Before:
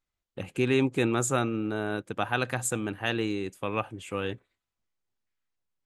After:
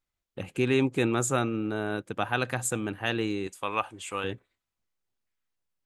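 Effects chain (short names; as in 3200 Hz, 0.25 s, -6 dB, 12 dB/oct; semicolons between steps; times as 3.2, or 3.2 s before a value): 3.47–4.24 ten-band EQ 125 Hz -11 dB, 250 Hz -4 dB, 500 Hz -3 dB, 1000 Hz +5 dB, 4000 Hz +4 dB, 8000 Hz +7 dB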